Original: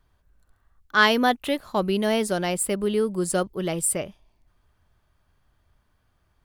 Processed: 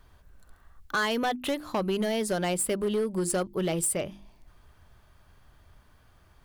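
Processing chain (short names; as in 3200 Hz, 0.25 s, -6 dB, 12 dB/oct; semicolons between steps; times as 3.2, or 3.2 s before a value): notches 50/100/150/200/250/300/350 Hz; compressor 3:1, threshold -37 dBFS, peak gain reduction 18 dB; overloaded stage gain 31 dB; gain +9 dB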